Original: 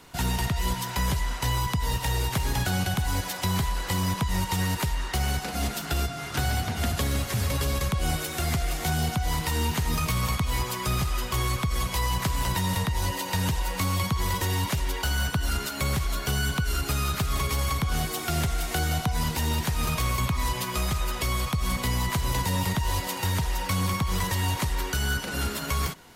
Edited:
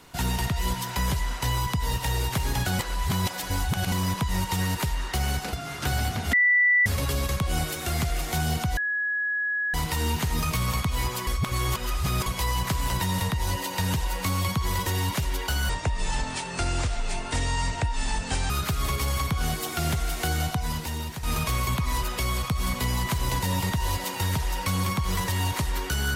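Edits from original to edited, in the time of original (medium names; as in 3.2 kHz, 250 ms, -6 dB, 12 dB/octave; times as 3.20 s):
2.79–3.92 s: reverse
5.53–6.05 s: delete
6.85–7.38 s: bleep 1.97 kHz -16.5 dBFS
9.29 s: add tone 1.68 kHz -24 dBFS 0.97 s
10.82–11.81 s: reverse
15.24–17.01 s: speed 63%
18.90–19.74 s: fade out, to -9.5 dB
20.54–21.06 s: delete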